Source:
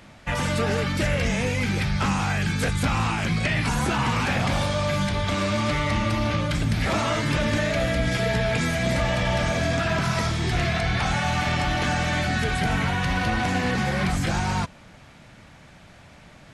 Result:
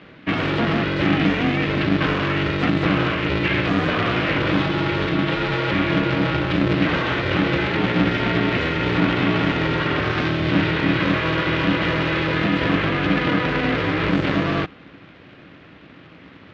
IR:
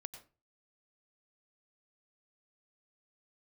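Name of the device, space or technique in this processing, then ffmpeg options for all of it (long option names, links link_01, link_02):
ring modulator pedal into a guitar cabinet: -af "aeval=exprs='val(0)*sgn(sin(2*PI*240*n/s))':channel_layout=same,highpass=84,equalizer=frequency=180:width_type=q:width=4:gain=5,equalizer=frequency=270:width_type=q:width=4:gain=9,equalizer=frequency=400:width_type=q:width=4:gain=-7,equalizer=frequency=880:width_type=q:width=4:gain=-9,lowpass=frequency=3500:width=0.5412,lowpass=frequency=3500:width=1.3066,volume=4dB"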